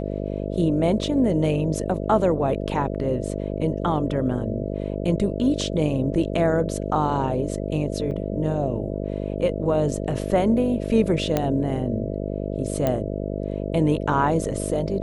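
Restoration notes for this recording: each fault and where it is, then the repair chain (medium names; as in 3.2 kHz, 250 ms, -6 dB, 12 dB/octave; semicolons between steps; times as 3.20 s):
buzz 50 Hz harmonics 13 -28 dBFS
8.11 s: dropout 4.6 ms
11.37 s: pop -8 dBFS
12.87 s: pop -10 dBFS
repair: de-click; de-hum 50 Hz, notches 13; interpolate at 8.11 s, 4.6 ms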